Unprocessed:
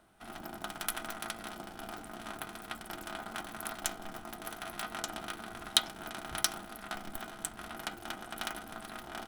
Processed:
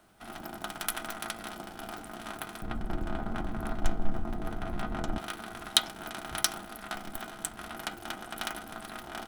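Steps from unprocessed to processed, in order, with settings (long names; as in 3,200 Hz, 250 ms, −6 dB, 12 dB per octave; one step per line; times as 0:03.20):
0:02.62–0:05.18: spectral tilt −4.5 dB per octave
background noise pink −72 dBFS
level +2.5 dB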